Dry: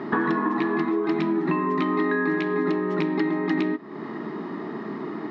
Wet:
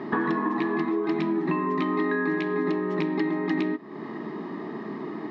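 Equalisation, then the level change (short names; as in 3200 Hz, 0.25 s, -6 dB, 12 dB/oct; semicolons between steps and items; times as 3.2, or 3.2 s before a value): notch 1400 Hz, Q 8.1; -2.0 dB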